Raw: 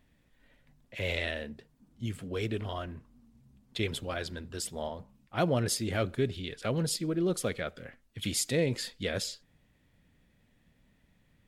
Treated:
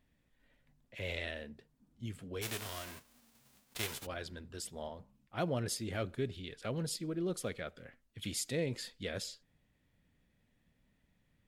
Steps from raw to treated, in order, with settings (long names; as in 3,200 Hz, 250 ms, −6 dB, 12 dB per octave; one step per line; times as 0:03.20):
0:02.41–0:04.05: spectral envelope flattened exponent 0.3
level −7 dB